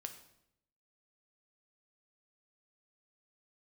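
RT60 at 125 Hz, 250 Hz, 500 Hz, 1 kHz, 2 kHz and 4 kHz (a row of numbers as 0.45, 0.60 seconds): 1.0, 0.90, 0.80, 0.70, 0.70, 0.65 seconds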